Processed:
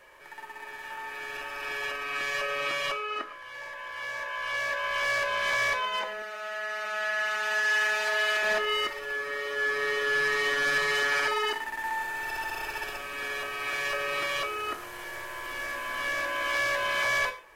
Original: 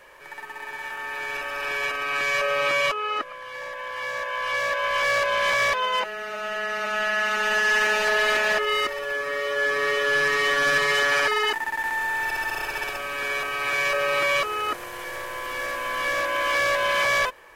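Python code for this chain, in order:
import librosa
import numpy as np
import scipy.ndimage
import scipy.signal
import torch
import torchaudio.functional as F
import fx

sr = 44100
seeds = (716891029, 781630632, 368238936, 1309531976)

y = fx.highpass(x, sr, hz=830.0, slope=6, at=(6.22, 8.43))
y = fx.rev_gated(y, sr, seeds[0], gate_ms=170, shape='falling', drr_db=7.5)
y = F.gain(torch.from_numpy(y), -5.5).numpy()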